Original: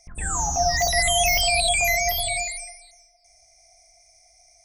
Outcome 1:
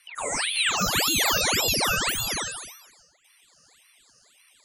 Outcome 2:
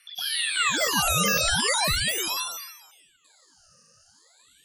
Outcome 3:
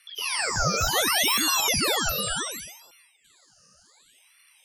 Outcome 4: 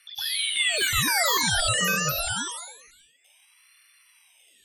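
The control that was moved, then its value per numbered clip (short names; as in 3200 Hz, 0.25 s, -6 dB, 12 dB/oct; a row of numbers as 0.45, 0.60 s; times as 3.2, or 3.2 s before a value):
ring modulator with a swept carrier, at: 1.8, 0.39, 0.68, 0.26 Hz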